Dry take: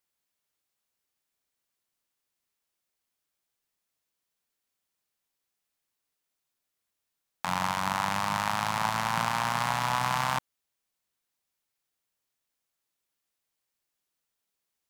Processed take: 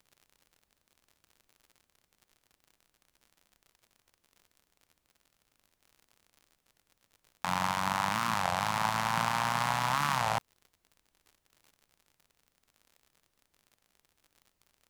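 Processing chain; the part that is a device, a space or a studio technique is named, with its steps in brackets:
warped LP (wow of a warped record 33 1/3 rpm, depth 250 cents; surface crackle 67 per second −45 dBFS; pink noise bed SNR 43 dB)
level −1.5 dB

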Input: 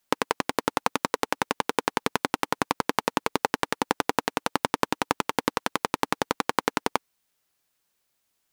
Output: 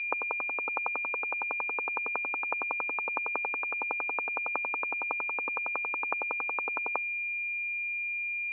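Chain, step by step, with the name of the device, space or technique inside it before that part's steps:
toy sound module (linearly interpolated sample-rate reduction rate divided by 8×; switching amplifier with a slow clock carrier 2,400 Hz; loudspeaker in its box 680–3,600 Hz, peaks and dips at 1,300 Hz +4 dB, 2,000 Hz −6 dB, 3,200 Hz −4 dB)
level −5 dB

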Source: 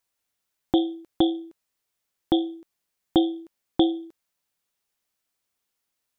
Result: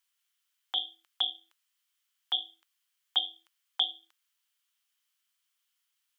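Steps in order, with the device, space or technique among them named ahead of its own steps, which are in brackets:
headphones lying on a table (high-pass filter 1,100 Hz 24 dB per octave; parametric band 3,100 Hz +9 dB 0.23 octaves)

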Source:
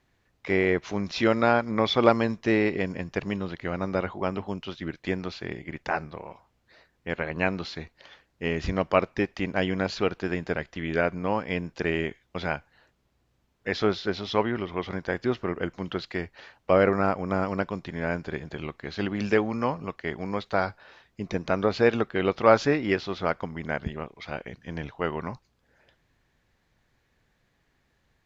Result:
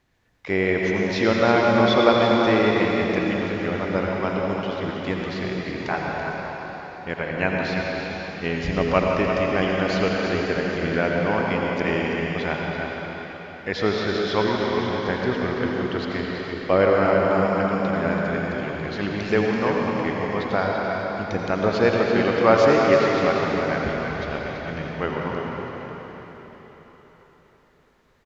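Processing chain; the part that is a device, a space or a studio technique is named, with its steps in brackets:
cave (single-tap delay 333 ms −8 dB; convolution reverb RT60 4.5 s, pre-delay 76 ms, DRR −1.5 dB)
level +1 dB

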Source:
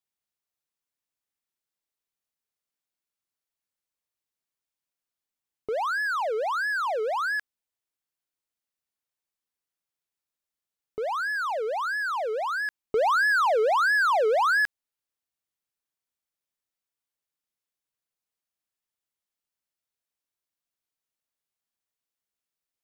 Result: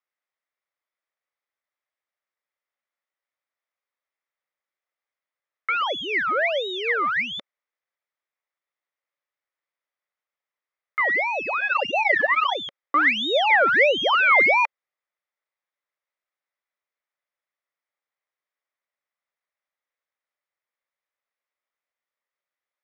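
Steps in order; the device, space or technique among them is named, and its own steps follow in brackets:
0:11.60–0:12.55: comb filter 5.3 ms, depth 98%
voice changer toy (ring modulator whose carrier an LFO sweeps 1,400 Hz, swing 50%, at 1.2 Hz; loudspeaker in its box 490–4,500 Hz, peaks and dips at 560 Hz +7 dB, 1,200 Hz +5 dB, 2,000 Hz +8 dB, 2,900 Hz −6 dB, 4,300 Hz −8 dB)
level +5.5 dB

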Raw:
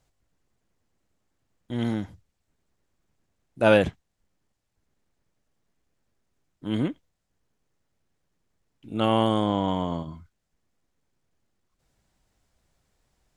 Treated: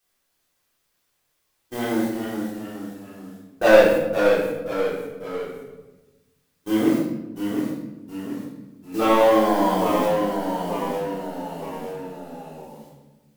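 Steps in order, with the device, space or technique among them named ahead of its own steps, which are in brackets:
aircraft radio (band-pass filter 300–2,300 Hz; hard clipping −20.5 dBFS, distortion −8 dB; white noise bed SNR 12 dB; noise gate −39 dBFS, range −32 dB)
reverb reduction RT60 0.72 s
rectangular room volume 430 cubic metres, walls mixed, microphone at 3.7 metres
delay with pitch and tempo change per echo 301 ms, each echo −1 semitone, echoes 3, each echo −6 dB
level +1.5 dB

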